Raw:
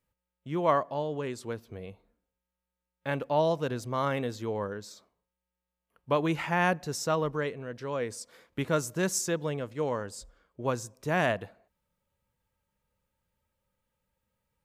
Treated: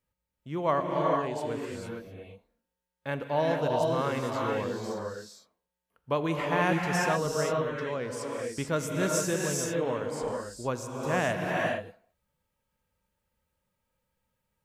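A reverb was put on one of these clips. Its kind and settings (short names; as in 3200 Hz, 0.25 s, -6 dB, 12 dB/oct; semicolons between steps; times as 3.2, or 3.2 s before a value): non-linear reverb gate 0.48 s rising, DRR -1 dB; gain -2 dB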